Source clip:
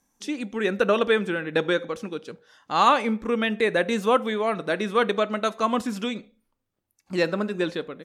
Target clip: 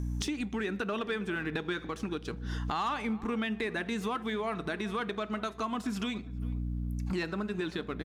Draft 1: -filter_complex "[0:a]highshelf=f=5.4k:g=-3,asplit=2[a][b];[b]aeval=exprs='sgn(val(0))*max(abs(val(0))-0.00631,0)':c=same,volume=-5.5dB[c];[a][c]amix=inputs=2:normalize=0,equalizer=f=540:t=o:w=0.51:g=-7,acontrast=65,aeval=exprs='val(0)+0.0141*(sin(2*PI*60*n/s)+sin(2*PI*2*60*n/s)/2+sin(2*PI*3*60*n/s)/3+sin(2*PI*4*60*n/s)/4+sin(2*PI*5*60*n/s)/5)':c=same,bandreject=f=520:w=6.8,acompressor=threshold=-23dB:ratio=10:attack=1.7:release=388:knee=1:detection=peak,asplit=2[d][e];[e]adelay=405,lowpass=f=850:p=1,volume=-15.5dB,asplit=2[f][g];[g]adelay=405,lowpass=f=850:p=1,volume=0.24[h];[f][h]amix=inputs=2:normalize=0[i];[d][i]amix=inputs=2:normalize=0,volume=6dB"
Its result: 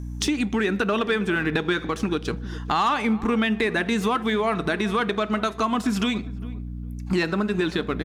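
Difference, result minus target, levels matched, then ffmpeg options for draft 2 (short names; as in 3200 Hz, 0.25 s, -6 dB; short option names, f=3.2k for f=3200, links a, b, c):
compressor: peak gain reduction -10.5 dB
-filter_complex "[0:a]highshelf=f=5.4k:g=-3,asplit=2[a][b];[b]aeval=exprs='sgn(val(0))*max(abs(val(0))-0.00631,0)':c=same,volume=-5.5dB[c];[a][c]amix=inputs=2:normalize=0,equalizer=f=540:t=o:w=0.51:g=-7,acontrast=65,aeval=exprs='val(0)+0.0141*(sin(2*PI*60*n/s)+sin(2*PI*2*60*n/s)/2+sin(2*PI*3*60*n/s)/3+sin(2*PI*4*60*n/s)/4+sin(2*PI*5*60*n/s)/5)':c=same,bandreject=f=520:w=6.8,acompressor=threshold=-34.5dB:ratio=10:attack=1.7:release=388:knee=1:detection=peak,asplit=2[d][e];[e]adelay=405,lowpass=f=850:p=1,volume=-15.5dB,asplit=2[f][g];[g]adelay=405,lowpass=f=850:p=1,volume=0.24[h];[f][h]amix=inputs=2:normalize=0[i];[d][i]amix=inputs=2:normalize=0,volume=6dB"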